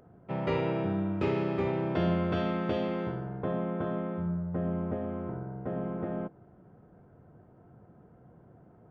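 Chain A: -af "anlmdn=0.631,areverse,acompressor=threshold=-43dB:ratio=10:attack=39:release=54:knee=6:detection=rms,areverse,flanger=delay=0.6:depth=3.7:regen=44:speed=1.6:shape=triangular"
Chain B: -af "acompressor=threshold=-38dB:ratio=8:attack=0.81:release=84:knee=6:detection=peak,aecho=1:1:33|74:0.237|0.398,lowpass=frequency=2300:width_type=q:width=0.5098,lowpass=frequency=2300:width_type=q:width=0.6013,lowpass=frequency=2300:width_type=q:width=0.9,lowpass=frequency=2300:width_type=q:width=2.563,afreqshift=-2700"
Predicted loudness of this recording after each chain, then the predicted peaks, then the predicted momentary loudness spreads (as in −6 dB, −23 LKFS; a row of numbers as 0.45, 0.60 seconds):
−48.5, −39.0 LKFS; −35.5, −30.5 dBFS; 2, 16 LU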